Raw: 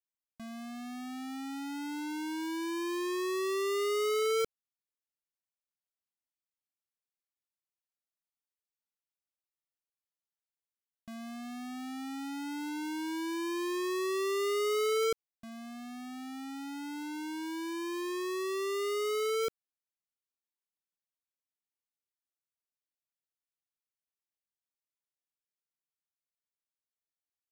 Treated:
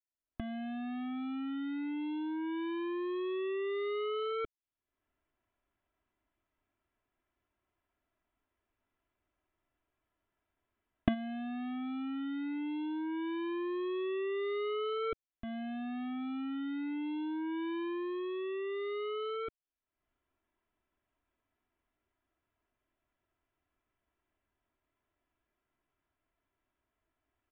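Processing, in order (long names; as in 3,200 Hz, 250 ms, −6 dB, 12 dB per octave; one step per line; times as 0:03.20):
camcorder AGC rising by 52 dB per second
low-pass that shuts in the quiet parts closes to 1,600 Hz
noise gate −30 dBFS, range −8 dB
low-shelf EQ 220 Hz +8.5 dB
comb filter 3 ms, depth 59%
leveller curve on the samples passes 1
downsampling to 8,000 Hz
level −3.5 dB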